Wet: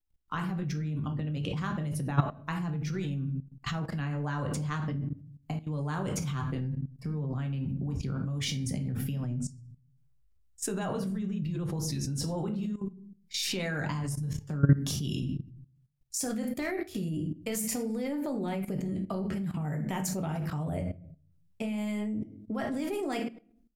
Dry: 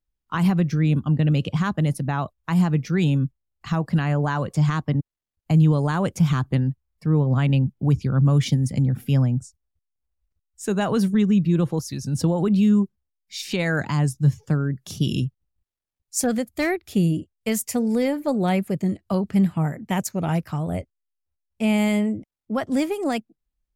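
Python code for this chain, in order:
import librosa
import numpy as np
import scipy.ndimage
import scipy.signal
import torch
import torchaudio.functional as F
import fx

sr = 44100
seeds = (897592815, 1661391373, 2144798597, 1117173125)

y = fx.over_compress(x, sr, threshold_db=-24.0, ratio=-1.0)
y = fx.room_shoebox(y, sr, seeds[0], volume_m3=46.0, walls='mixed', distance_m=0.42)
y = fx.level_steps(y, sr, step_db=16)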